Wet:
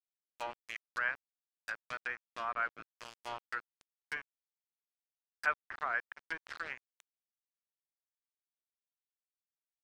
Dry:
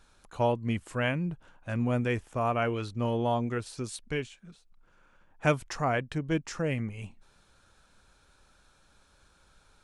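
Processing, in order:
sub-octave generator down 1 octave, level 0 dB
four-pole ladder band-pass 1,800 Hz, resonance 50%
centre clipping without the shift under −47 dBFS
treble cut that deepens with the level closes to 1,500 Hz, closed at −44 dBFS
level +10 dB

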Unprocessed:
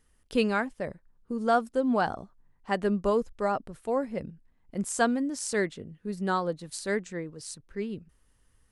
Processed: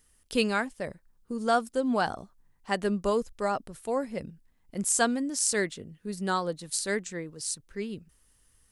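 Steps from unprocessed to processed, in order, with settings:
high-shelf EQ 3,400 Hz +11.5 dB
level −1.5 dB

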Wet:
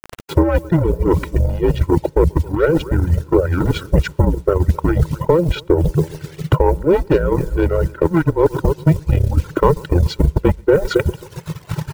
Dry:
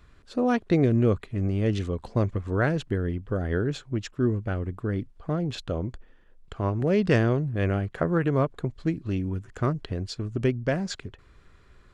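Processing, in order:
variable-slope delta modulation 64 kbit/s
camcorder AGC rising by 6.9 dB per second
echo machine with several playback heads 134 ms, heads first and second, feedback 45%, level −17 dB
leveller curve on the samples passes 3
frequency shifter −170 Hz
resonant band-pass 330 Hz, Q 0.64
comb filter 2.1 ms, depth 96%
bit reduction 8 bits
reversed playback
downward compressor 16 to 1, threshold −24 dBFS, peak gain reduction 13.5 dB
reversed playback
transient designer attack +9 dB, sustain −4 dB
reverb reduction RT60 1.9 s
boost into a limiter +14.5 dB
level −1 dB

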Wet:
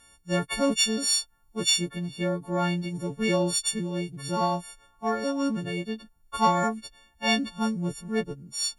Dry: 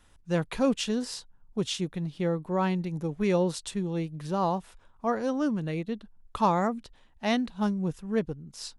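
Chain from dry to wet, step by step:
every partial snapped to a pitch grid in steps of 4 semitones
harmonic generator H 4 −30 dB, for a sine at −9.5 dBFS
0:00.97–0:01.70: tilt shelving filter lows −3 dB, about 710 Hz

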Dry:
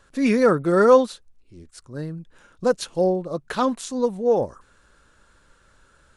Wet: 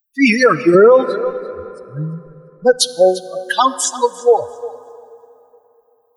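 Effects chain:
spectral dynamics exaggerated over time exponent 3
high-pass filter 270 Hz 6 dB per octave
parametric band 9,200 Hz −8.5 dB 1.4 octaves
harmonic and percussive parts rebalanced harmonic +5 dB
spectral tilt +4 dB per octave, from 0:00.74 −2 dB per octave, from 0:02.78 +4 dB per octave
downward compressor, threshold −16 dBFS, peak gain reduction 10.5 dB
feedback echo with a high-pass in the loop 344 ms, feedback 17%, level −19.5 dB
dense smooth reverb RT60 3.2 s, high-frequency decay 0.6×, DRR 17.5 dB
boost into a limiter +18.5 dB
level −1 dB

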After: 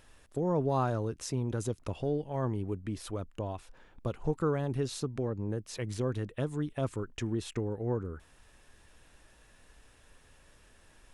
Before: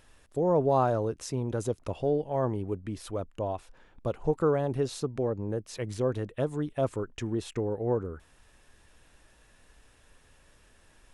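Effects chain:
dynamic equaliser 610 Hz, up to −8 dB, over −40 dBFS, Q 0.93

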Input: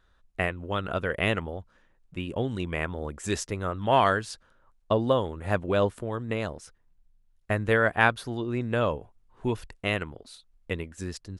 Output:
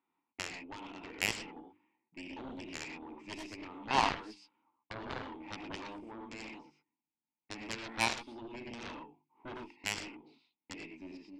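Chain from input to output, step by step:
low-pass that shuts in the quiet parts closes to 1,900 Hz, open at −22 dBFS
high-shelf EQ 7,200 Hz +10.5 dB
mains-hum notches 50/100/150/200/250/300/350/400/450 Hz
in parallel at −2 dB: downward compressor, threshold −36 dBFS, peak gain reduction 19.5 dB
on the sum: formant filter u
loudspeaker in its box 190–9,600 Hz, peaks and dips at 310 Hz −5 dB, 1,900 Hz +3 dB, 2,700 Hz +6 dB, 5,000 Hz +9 dB
reverb whose tail is shaped and stops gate 140 ms rising, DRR 1.5 dB
harmonic generator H 2 −13 dB, 3 −22 dB, 7 −15 dB, 8 −25 dB, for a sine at −19 dBFS
level +5 dB

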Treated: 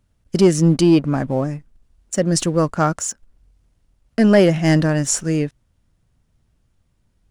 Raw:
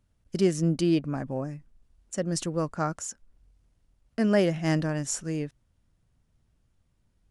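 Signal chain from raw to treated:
leveller curve on the samples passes 1
level +7.5 dB

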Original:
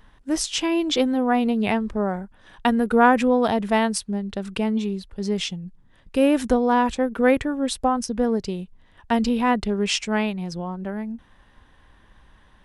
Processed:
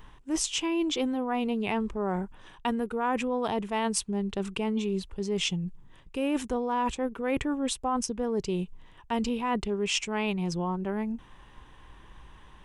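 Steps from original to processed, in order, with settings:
EQ curve with evenly spaced ripples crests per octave 0.7, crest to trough 6 dB
reversed playback
downward compressor 6 to 1, threshold −28 dBFS, peak gain reduction 16.5 dB
reversed playback
level +2 dB

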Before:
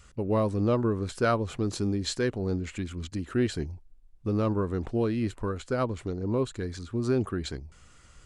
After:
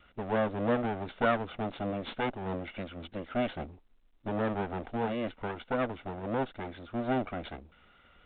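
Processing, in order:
lower of the sound and its delayed copy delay 1.4 ms
low shelf with overshoot 170 Hz −10 dB, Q 1.5
mu-law 64 kbit/s 8,000 Hz

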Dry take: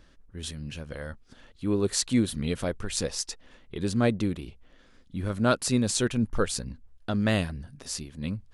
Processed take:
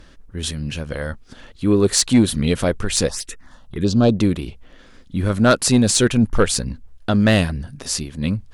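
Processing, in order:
sine wavefolder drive 4 dB, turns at −9 dBFS
0:03.09–0:04.16: phaser swept by the level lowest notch 310 Hz, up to 2,000 Hz, full sweep at −17.5 dBFS
level +3 dB

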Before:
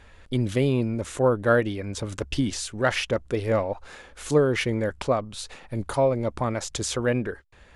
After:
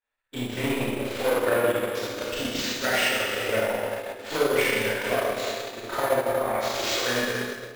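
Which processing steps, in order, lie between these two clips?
flanger swept by the level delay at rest 9 ms, full sweep at −16.5 dBFS
bad sample-rate conversion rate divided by 4×, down none, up hold
soft clipping −19.5 dBFS, distortion −13 dB
tilt shelving filter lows −5 dB, about 740 Hz
four-comb reverb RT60 2.5 s, combs from 25 ms, DRR −9 dB
transient designer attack +4 dB, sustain −9 dB
bass and treble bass −10 dB, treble −7 dB
downward expander −28 dBFS
on a send: feedback echo with a band-pass in the loop 357 ms, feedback 78%, band-pass 310 Hz, level −14 dB
on the sum: level −2 dB

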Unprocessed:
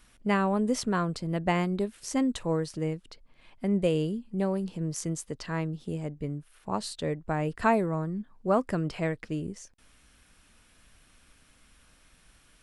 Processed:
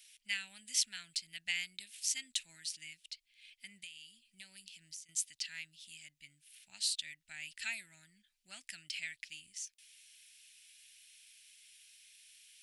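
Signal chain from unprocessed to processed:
inverse Chebyshev high-pass filter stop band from 1,200 Hz, stop band 40 dB
0:03.68–0:05.09: downward compressor 8 to 1, threshold −52 dBFS, peak gain reduction 18.5 dB
level +4.5 dB

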